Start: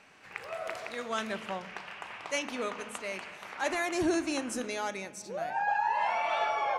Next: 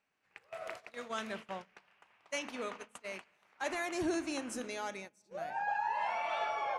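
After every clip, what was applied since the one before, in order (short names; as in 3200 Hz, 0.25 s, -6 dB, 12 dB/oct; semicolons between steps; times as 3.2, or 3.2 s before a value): gate -38 dBFS, range -19 dB; gain -5.5 dB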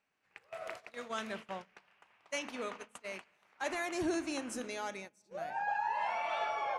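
nothing audible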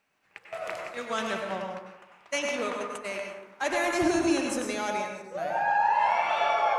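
plate-style reverb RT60 1 s, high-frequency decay 0.45×, pre-delay 85 ms, DRR 1.5 dB; gain +7.5 dB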